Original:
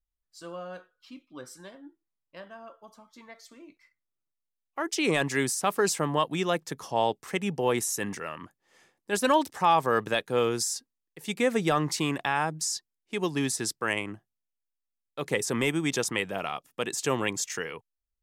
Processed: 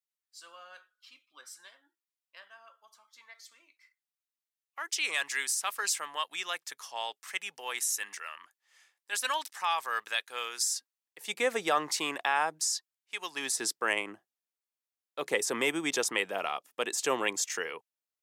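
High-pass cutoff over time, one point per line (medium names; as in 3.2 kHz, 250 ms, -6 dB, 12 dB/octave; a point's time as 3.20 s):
10.57 s 1.5 kHz
11.38 s 540 Hz
12.49 s 540 Hz
13.21 s 1.3 kHz
13.65 s 390 Hz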